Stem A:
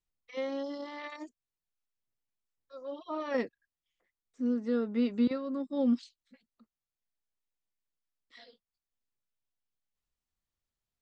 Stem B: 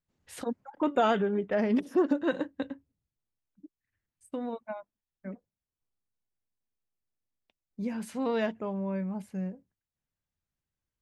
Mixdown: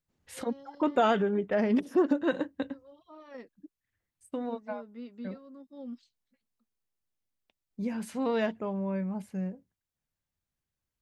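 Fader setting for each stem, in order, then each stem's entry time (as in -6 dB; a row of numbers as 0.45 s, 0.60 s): -14.5 dB, +0.5 dB; 0.00 s, 0.00 s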